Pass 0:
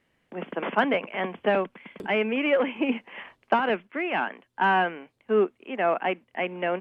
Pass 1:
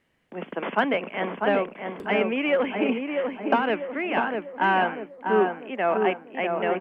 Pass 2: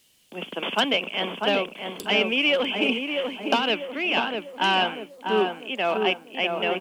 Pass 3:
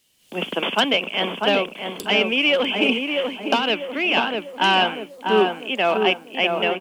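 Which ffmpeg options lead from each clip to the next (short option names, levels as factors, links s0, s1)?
-filter_complex "[0:a]asplit=2[s0][s1];[s1]adelay=646,lowpass=f=1400:p=1,volume=0.668,asplit=2[s2][s3];[s3]adelay=646,lowpass=f=1400:p=1,volume=0.5,asplit=2[s4][s5];[s5]adelay=646,lowpass=f=1400:p=1,volume=0.5,asplit=2[s6][s7];[s7]adelay=646,lowpass=f=1400:p=1,volume=0.5,asplit=2[s8][s9];[s9]adelay=646,lowpass=f=1400:p=1,volume=0.5,asplit=2[s10][s11];[s11]adelay=646,lowpass=f=1400:p=1,volume=0.5,asplit=2[s12][s13];[s13]adelay=646,lowpass=f=1400:p=1,volume=0.5[s14];[s0][s2][s4][s6][s8][s10][s12][s14]amix=inputs=8:normalize=0"
-af "aexciter=amount=11.3:drive=5.9:freq=2900,volume=0.841"
-af "dynaudnorm=f=180:g=3:m=4.47,volume=0.631"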